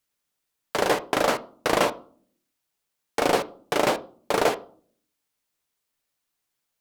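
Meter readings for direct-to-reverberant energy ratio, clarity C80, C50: 10.5 dB, 23.0 dB, 19.0 dB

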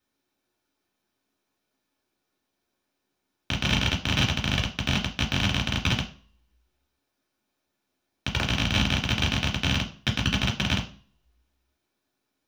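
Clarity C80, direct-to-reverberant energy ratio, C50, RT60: 16.0 dB, -2.5 dB, 11.5 dB, 0.40 s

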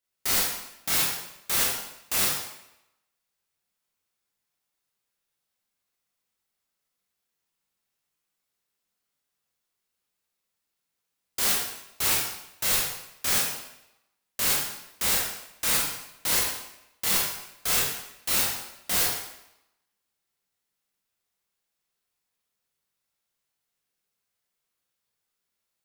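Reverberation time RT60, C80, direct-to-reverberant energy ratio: 0.85 s, 4.0 dB, -4.0 dB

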